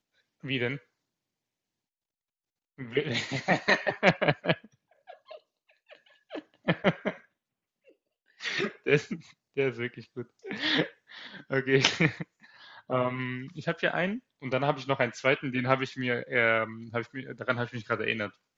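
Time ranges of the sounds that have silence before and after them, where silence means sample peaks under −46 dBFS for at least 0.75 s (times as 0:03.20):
0:02.78–0:07.20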